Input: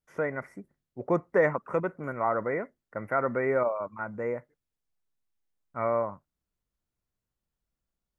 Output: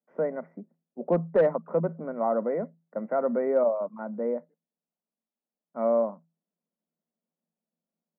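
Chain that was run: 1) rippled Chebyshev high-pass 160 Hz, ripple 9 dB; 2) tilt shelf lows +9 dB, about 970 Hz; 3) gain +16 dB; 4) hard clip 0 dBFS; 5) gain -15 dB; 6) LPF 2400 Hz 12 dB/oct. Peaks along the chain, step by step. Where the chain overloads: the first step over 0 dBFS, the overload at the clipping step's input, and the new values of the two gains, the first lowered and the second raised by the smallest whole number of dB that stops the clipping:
-15.5, -11.0, +5.0, 0.0, -15.0, -14.5 dBFS; step 3, 5.0 dB; step 3 +11 dB, step 5 -10 dB

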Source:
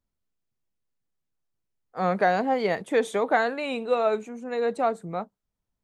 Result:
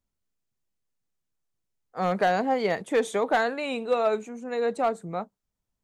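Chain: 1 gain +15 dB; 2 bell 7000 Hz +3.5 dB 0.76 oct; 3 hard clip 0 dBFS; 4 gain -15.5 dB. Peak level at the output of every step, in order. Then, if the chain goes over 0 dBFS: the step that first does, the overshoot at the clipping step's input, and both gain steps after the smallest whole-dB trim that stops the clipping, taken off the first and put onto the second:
+5.5, +5.5, 0.0, -15.5 dBFS; step 1, 5.5 dB; step 1 +9 dB, step 4 -9.5 dB

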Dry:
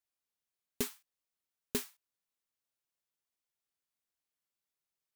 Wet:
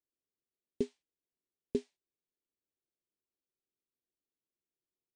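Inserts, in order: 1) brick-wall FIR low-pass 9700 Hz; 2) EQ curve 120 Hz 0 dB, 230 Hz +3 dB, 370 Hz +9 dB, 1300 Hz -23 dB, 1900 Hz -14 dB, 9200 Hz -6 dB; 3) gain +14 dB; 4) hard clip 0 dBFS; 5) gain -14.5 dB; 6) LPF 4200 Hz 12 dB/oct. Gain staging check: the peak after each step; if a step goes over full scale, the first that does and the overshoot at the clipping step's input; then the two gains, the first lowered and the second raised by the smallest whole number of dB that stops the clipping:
-19.0, -18.0, -4.0, -4.0, -18.5, -19.0 dBFS; no overload

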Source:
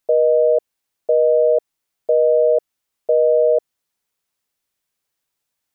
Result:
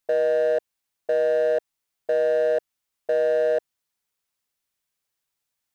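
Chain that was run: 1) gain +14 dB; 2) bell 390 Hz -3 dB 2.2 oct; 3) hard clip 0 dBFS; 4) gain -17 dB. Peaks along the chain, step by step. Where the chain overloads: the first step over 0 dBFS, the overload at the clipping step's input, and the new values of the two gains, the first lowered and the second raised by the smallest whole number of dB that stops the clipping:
+6.0, +3.5, 0.0, -17.0 dBFS; step 1, 3.5 dB; step 1 +10 dB, step 4 -13 dB

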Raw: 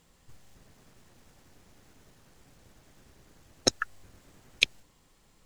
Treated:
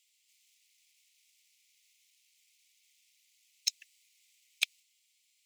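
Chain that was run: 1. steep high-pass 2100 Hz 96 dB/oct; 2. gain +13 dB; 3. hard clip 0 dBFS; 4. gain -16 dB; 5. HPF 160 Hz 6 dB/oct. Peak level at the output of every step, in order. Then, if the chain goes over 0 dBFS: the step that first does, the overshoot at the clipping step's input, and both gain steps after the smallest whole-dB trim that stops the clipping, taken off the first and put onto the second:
-4.0, +9.0, 0.0, -16.0, -15.5 dBFS; step 2, 9.0 dB; step 2 +4 dB, step 4 -7 dB

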